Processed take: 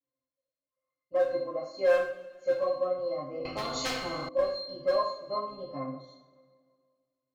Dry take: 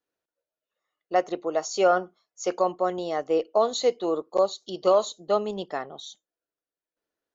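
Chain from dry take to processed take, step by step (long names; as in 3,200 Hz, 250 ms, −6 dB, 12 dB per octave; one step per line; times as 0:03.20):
resonances in every octave C, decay 0.27 s
in parallel at −5 dB: wave folding −32 dBFS
on the sum: coupled-rooms reverb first 0.53 s, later 2 s, from −18 dB, DRR −7.5 dB
0:03.45–0:04.29: every bin compressed towards the loudest bin 4 to 1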